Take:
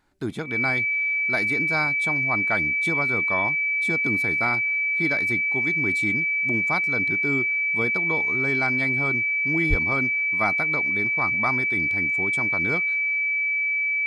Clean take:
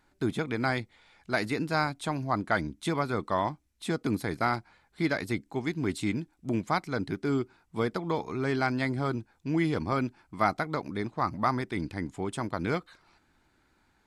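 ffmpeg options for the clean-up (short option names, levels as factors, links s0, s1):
-filter_complex "[0:a]bandreject=f=2300:w=30,asplit=3[s0][s1][s2];[s0]afade=t=out:st=9.69:d=0.02[s3];[s1]highpass=f=140:w=0.5412,highpass=f=140:w=1.3066,afade=t=in:st=9.69:d=0.02,afade=t=out:st=9.81:d=0.02[s4];[s2]afade=t=in:st=9.81:d=0.02[s5];[s3][s4][s5]amix=inputs=3:normalize=0"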